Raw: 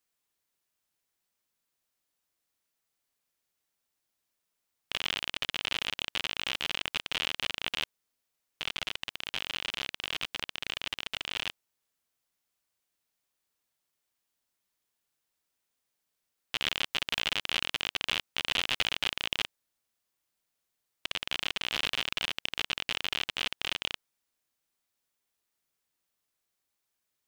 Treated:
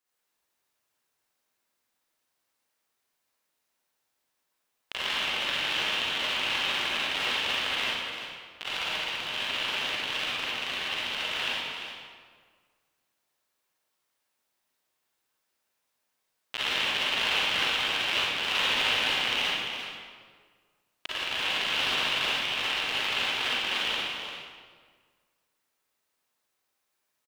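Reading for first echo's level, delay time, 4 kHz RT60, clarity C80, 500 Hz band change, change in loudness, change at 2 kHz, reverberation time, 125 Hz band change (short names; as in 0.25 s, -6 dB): -9.0 dB, 0.346 s, 1.4 s, -2.5 dB, +7.0 dB, +5.0 dB, +6.5 dB, 1.8 s, +1.5 dB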